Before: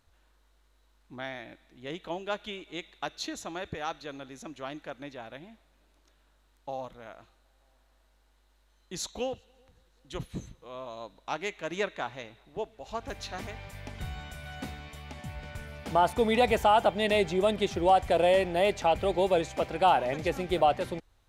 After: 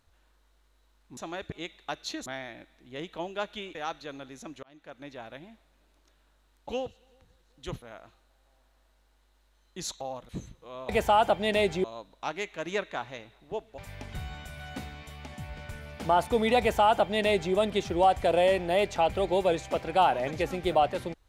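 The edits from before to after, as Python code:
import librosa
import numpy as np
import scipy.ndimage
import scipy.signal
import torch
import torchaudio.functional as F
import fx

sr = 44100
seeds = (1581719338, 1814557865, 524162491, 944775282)

y = fx.edit(x, sr, fx.swap(start_s=1.17, length_s=1.49, other_s=3.4, other_length_s=0.35),
    fx.fade_in_span(start_s=4.63, length_s=0.53),
    fx.swap(start_s=6.69, length_s=0.28, other_s=9.16, other_length_s=1.13),
    fx.cut(start_s=12.83, length_s=0.81),
    fx.duplicate(start_s=16.45, length_s=0.95, to_s=10.89), tone=tone)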